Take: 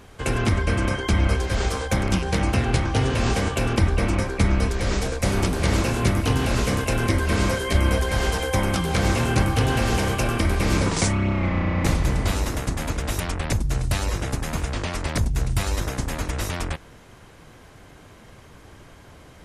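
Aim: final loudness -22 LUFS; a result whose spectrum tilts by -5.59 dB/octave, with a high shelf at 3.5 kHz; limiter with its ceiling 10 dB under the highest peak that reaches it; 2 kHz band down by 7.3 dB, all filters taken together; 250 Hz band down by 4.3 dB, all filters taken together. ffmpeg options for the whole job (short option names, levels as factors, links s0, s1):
-af "equalizer=f=250:t=o:g=-6,equalizer=f=2000:t=o:g=-8.5,highshelf=f=3500:g=-4,volume=2.11,alimiter=limit=0.266:level=0:latency=1"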